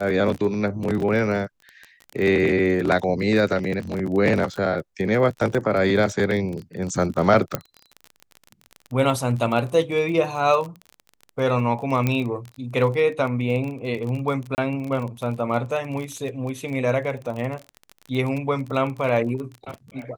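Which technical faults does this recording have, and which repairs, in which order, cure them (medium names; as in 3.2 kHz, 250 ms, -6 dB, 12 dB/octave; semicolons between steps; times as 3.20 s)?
crackle 27 per s -28 dBFS
7.55 s: pop -8 dBFS
12.07 s: pop -9 dBFS
14.55–14.58 s: dropout 29 ms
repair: de-click; interpolate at 14.55 s, 29 ms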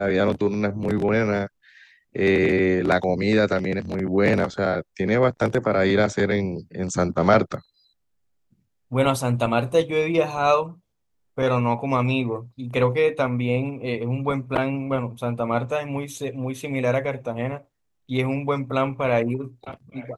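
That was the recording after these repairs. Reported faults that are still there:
7.55 s: pop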